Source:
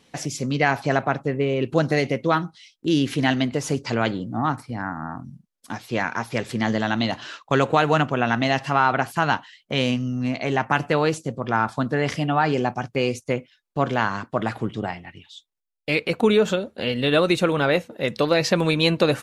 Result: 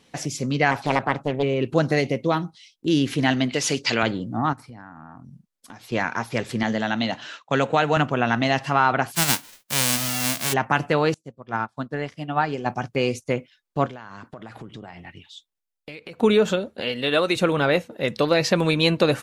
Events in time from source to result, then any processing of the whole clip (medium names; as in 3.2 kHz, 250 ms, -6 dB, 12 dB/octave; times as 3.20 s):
0.71–1.43 s: loudspeaker Doppler distortion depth 0.58 ms
2.01–2.88 s: peaking EQ 1.5 kHz -7 dB 0.86 oct
3.49–4.03 s: frequency weighting D
4.53–5.92 s: compression 4:1, threshold -40 dBFS
6.63–7.97 s: cabinet simulation 140–8400 Hz, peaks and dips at 360 Hz -7 dB, 1.1 kHz -5 dB, 4.8 kHz -4 dB
9.14–10.52 s: formants flattened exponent 0.1
11.14–12.66 s: upward expansion 2.5:1, over -35 dBFS
13.86–16.21 s: compression 12:1, threshold -34 dBFS
16.81–17.36 s: bass shelf 230 Hz -12 dB